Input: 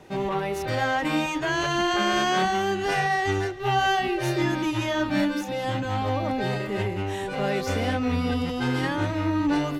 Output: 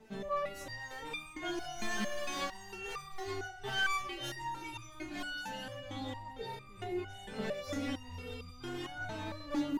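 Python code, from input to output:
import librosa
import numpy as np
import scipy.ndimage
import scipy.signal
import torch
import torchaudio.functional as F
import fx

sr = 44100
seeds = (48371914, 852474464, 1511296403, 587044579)

y = fx.echo_feedback(x, sr, ms=320, feedback_pct=55, wet_db=-14.0)
y = 10.0 ** (-18.0 / 20.0) * (np.abs((y / 10.0 ** (-18.0 / 20.0) + 3.0) % 4.0 - 2.0) - 1.0)
y = fx.low_shelf(y, sr, hz=150.0, db=6.5)
y = fx.resonator_held(y, sr, hz=4.4, low_hz=220.0, high_hz=1200.0)
y = y * librosa.db_to_amplitude(4.5)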